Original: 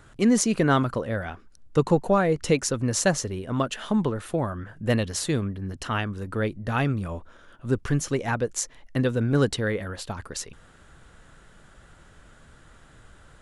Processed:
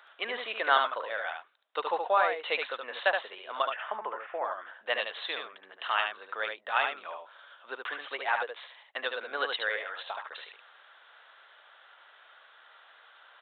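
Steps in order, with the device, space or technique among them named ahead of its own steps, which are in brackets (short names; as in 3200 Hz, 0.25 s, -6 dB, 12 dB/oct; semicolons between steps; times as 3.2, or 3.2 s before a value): 3.65–4.45 steep low-pass 2400 Hz 36 dB/oct; musical greeting card (downsampling 8000 Hz; HPF 670 Hz 24 dB/oct; bell 3800 Hz +6 dB 0.6 oct); echo 73 ms -5 dB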